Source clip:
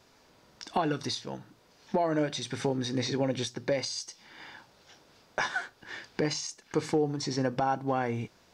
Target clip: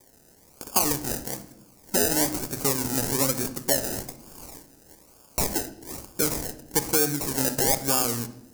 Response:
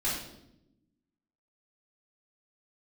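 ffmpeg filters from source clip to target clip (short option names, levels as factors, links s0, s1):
-filter_complex "[0:a]acrusher=samples=31:mix=1:aa=0.000001:lfo=1:lforange=18.6:lforate=1.1,aexciter=amount=3.5:drive=9.1:freq=4900,asplit=2[s0][s1];[1:a]atrim=start_sample=2205,highshelf=f=8400:g=-12[s2];[s1][s2]afir=irnorm=-1:irlink=0,volume=0.168[s3];[s0][s3]amix=inputs=2:normalize=0"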